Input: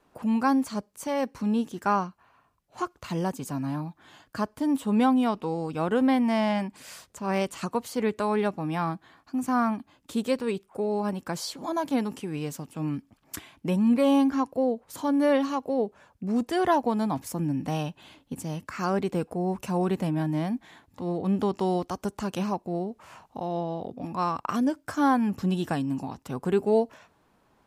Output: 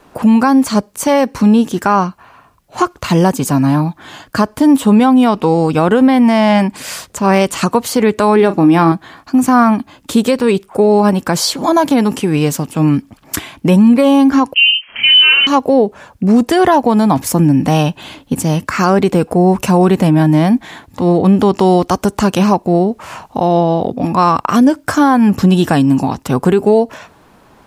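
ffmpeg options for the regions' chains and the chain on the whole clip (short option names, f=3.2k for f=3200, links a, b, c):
-filter_complex "[0:a]asettb=1/sr,asplit=3[a][b][c];[a]atrim=end=8.364[d];[b]atrim=start=8.36:end=8.92,asetpts=PTS-STARTPTS,afade=t=in:d=0.004:c=qsin,afade=t=out:st=0.556:d=0.004:c=qsin,equalizer=f=330:t=o:w=0.45:g=10,asplit=2[e][f];[f]adelay=36,volume=-14dB[g];[e][g]amix=inputs=2:normalize=0,atrim=end_sample=24696[h];[c]atrim=start=8.916[i];[d][h]acrossfade=d=0.004:c1=hsin:c2=qsin[j];[j][i]acrossfade=d=0.004:c1=qsin:c2=hsin,asettb=1/sr,asplit=3[k][l][m];[k]atrim=end=14.544[n];[l]atrim=start=14.54:end=15.47,asetpts=PTS-STARTPTS,afade=t=in:d=0.004:c=qsin,afade=t=out:st=0.926:d=0.004:c=qsin,asplit=2[o][p];[p]adelay=32,volume=-3.5dB[q];[o][q]amix=inputs=2:normalize=0,atrim=end_sample=41013,lowpass=f=2.8k:t=q:w=0.5098,lowpass=f=2.8k:t=q:w=0.6013,lowpass=f=2.8k:t=q:w=0.9,lowpass=f=2.8k:t=q:w=2.563,afreqshift=-3300[r];[m]atrim=start=15.466[s];[n][r]acrossfade=d=0.004:c1=hsin:c2=qsin[t];[t][s]acrossfade=d=0.004:c1=qsin:c2=hsin,acompressor=threshold=-24dB:ratio=6,alimiter=level_in=20dB:limit=-1dB:release=50:level=0:latency=1,volume=-1dB"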